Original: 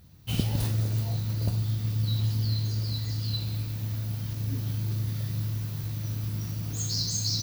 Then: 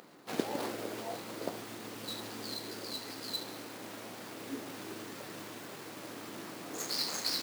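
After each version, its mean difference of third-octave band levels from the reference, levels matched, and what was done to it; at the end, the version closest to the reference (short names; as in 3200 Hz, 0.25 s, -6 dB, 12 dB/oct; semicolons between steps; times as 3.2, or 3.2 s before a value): 12.5 dB: median filter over 15 samples; HPF 320 Hz 24 dB/oct; upward compressor, threshold -54 dBFS; gain +6 dB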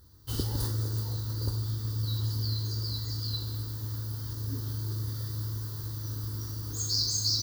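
4.5 dB: bell 4700 Hz +7.5 dB 0.24 oct; fixed phaser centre 660 Hz, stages 6; gain +1 dB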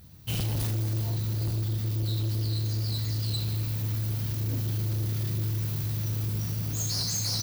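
3.0 dB: high shelf 8600 Hz +5 dB; in parallel at +3 dB: vocal rider 2 s; on the sum: overloaded stage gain 20.5 dB; gain -5.5 dB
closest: third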